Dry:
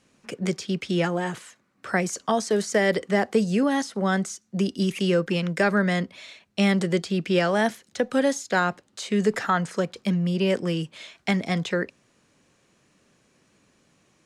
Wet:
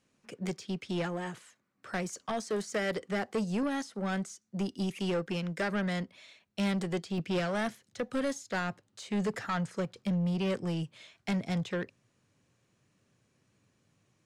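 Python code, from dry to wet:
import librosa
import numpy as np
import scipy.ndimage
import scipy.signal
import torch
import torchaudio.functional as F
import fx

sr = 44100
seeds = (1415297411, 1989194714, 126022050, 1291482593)

y = fx.peak_eq(x, sr, hz=110.0, db=fx.steps((0.0, 2.0), (7.18, 12.0)), octaves=0.83)
y = 10.0 ** (-20.5 / 20.0) * np.tanh(y / 10.0 ** (-20.5 / 20.0))
y = fx.upward_expand(y, sr, threshold_db=-34.0, expansion=1.5)
y = F.gain(torch.from_numpy(y), -5.0).numpy()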